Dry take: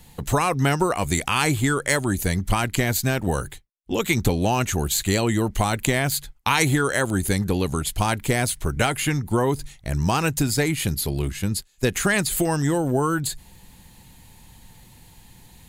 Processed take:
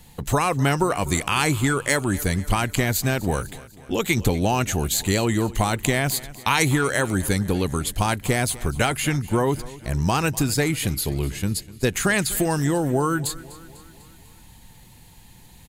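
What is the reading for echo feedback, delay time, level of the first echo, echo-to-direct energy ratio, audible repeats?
55%, 248 ms, -19.0 dB, -17.5 dB, 4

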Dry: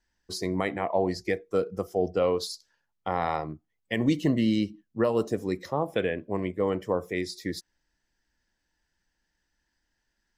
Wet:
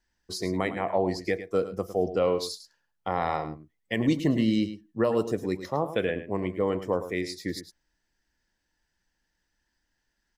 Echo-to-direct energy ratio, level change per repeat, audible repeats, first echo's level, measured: -12.0 dB, no regular repeats, 1, -12.0 dB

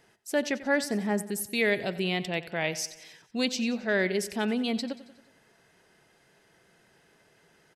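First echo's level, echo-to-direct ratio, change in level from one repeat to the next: -16.5 dB, -15.0 dB, -5.0 dB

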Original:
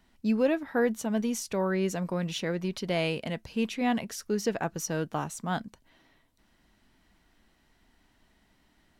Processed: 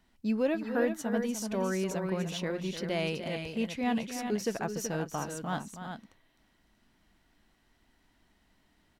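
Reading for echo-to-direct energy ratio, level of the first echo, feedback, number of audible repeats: -5.5 dB, -10.0 dB, no regular repeats, 2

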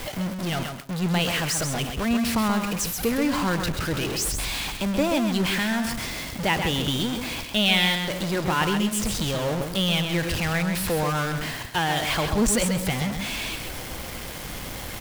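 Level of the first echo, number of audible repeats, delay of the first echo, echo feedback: -6.5 dB, 2, 132 ms, 18%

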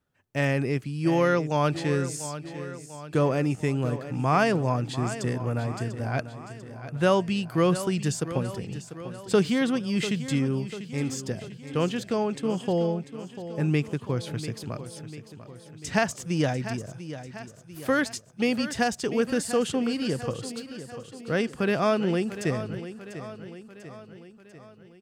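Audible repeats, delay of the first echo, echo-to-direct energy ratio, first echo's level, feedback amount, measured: 5, 694 ms, -11.0 dB, -12.5 dB, 55%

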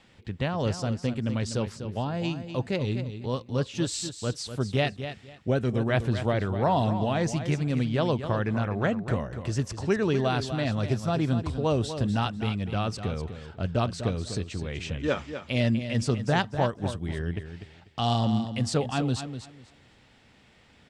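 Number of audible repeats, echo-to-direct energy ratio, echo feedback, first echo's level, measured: 2, -10.0 dB, 21%, -10.0 dB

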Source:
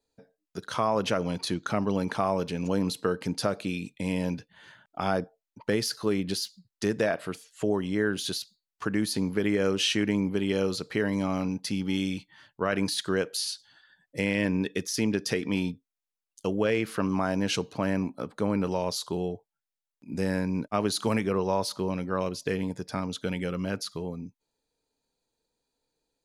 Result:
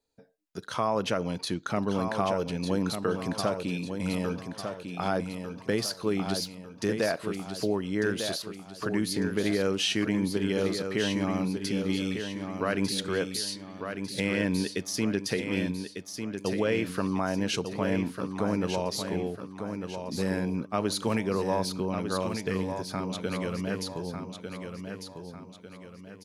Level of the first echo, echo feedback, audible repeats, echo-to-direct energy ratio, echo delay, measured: -7.0 dB, 41%, 4, -6.0 dB, 1199 ms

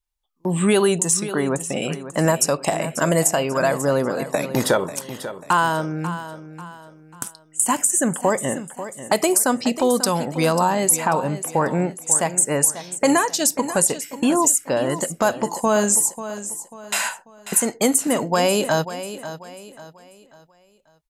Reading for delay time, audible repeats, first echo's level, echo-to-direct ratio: 541 ms, 3, -12.5 dB, -12.0 dB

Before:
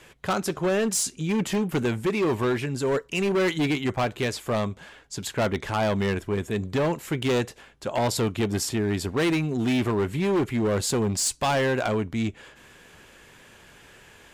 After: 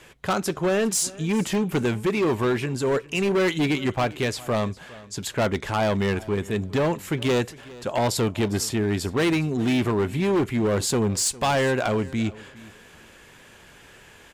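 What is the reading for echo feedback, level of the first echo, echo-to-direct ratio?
20%, -20.5 dB, -20.5 dB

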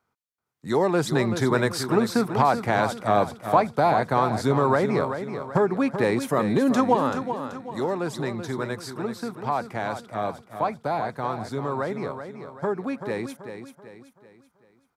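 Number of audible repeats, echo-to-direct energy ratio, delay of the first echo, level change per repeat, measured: 4, -8.0 dB, 383 ms, -7.5 dB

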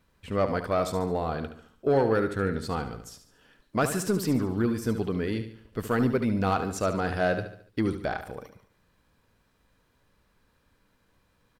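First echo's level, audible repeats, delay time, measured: -10.0 dB, 4, 72 ms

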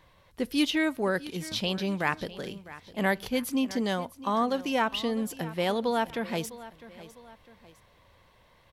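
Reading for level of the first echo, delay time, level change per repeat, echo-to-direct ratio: -17.0 dB, 655 ms, -7.5 dB, -16.5 dB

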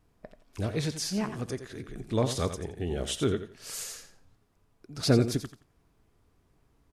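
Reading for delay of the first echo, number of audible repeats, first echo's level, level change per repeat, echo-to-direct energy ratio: 86 ms, 2, -10.5 dB, -13.0 dB, -10.5 dB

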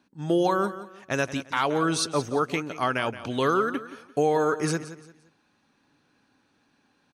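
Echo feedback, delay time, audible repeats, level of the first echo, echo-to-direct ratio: 31%, 173 ms, 3, -14.0 dB, -13.5 dB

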